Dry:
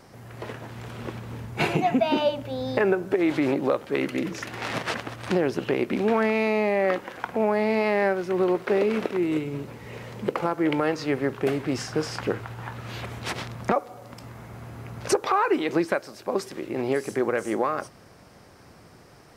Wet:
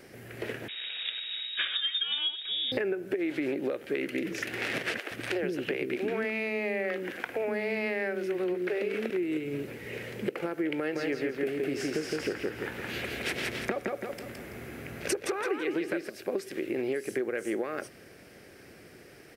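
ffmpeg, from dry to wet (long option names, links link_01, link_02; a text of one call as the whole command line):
ffmpeg -i in.wav -filter_complex "[0:a]asettb=1/sr,asplit=3[link_01][link_02][link_03];[link_01]atrim=end=0.684[link_04];[link_02]atrim=start=0.68:end=2.72,asetpts=PTS-STARTPTS,afade=type=in:duration=0.004:curve=qsin,afade=type=out:start_time=2.036:duration=0.004:curve=qsin,lowpass=frequency=3300:width_type=q:width=0.5098,lowpass=frequency=3300:width_type=q:width=0.6013,lowpass=frequency=3300:width_type=q:width=0.9,lowpass=frequency=3300:width_type=q:width=2.563,afreqshift=-3900[link_05];[link_03]atrim=start=2.716[link_06];[link_04][link_05]acrossfade=duration=0.004:curve1=hsin:curve2=qsin[link_07];[link_07][link_06]acrossfade=duration=0.004:curve1=qsin:curve2=hsin,asettb=1/sr,asplit=3[link_08][link_09][link_10];[link_08]atrim=end=4.994[link_11];[link_09]atrim=start=4.99:end=9.1,asetpts=PTS-STARTPTS,afade=type=in:duration=0.004:curve=qsin,afade=type=out:start_time=4.106:duration=0.004:curve=qsin,acrossover=split=360[link_12][link_13];[link_12]adelay=120[link_14];[link_14][link_13]amix=inputs=2:normalize=0,atrim=end_sample=181251[link_15];[link_10]atrim=start=9.096[link_16];[link_11][link_15]acrossfade=duration=0.004:curve1=hsin:curve2=qsin[link_17];[link_17][link_16]acrossfade=duration=0.004:curve1=qsin:curve2=hsin,asplit=3[link_18][link_19][link_20];[link_18]afade=type=out:start_time=10.94:duration=0.02[link_21];[link_19]aecho=1:1:166|332|498|664:0.708|0.234|0.0771|0.0254,afade=type=in:start_time=10.94:duration=0.02,afade=type=out:start_time=16.08:duration=0.02[link_22];[link_20]afade=type=in:start_time=16.08:duration=0.02[link_23];[link_21][link_22][link_23]amix=inputs=3:normalize=0,firequalizer=gain_entry='entry(120,0);entry(370,10);entry(1000,-6);entry(1600,9);entry(2400,11);entry(3800,5);entry(6600,4);entry(11000,10)':delay=0.05:min_phase=1,acompressor=threshold=-22dB:ratio=6,volume=-6dB" out.wav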